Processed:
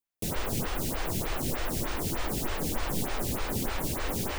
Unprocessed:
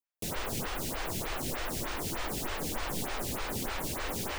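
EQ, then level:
low-shelf EQ 460 Hz +6.5 dB
high-shelf EQ 8,700 Hz +4 dB
0.0 dB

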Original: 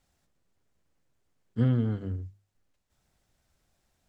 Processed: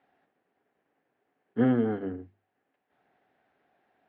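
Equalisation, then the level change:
loudspeaker in its box 250–2,800 Hz, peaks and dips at 270 Hz +6 dB, 420 Hz +7 dB, 750 Hz +10 dB, 1,700 Hz +6 dB
+3.5 dB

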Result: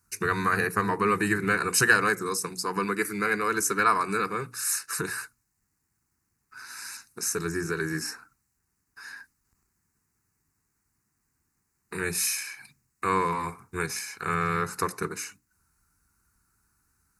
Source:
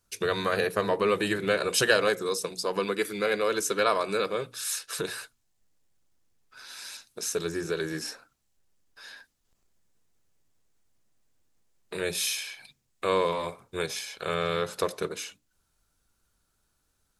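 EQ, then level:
high-pass filter 44 Hz
phaser with its sweep stopped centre 1,400 Hz, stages 4
+6.0 dB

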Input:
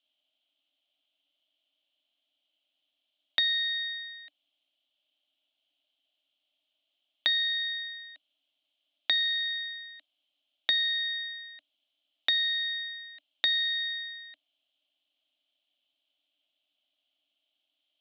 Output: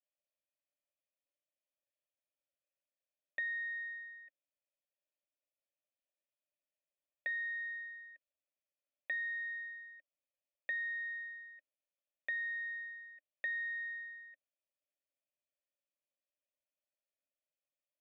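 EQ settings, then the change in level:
formant resonators in series e
0.0 dB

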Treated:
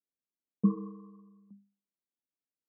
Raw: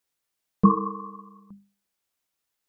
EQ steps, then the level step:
four-pole ladder band-pass 270 Hz, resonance 40%
+1.0 dB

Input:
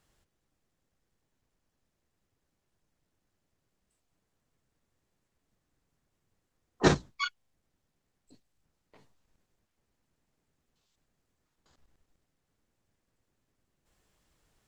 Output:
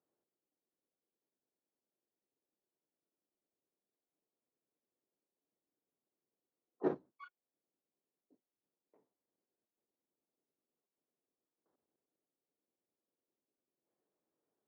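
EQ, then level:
four-pole ladder band-pass 450 Hz, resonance 25%
+1.0 dB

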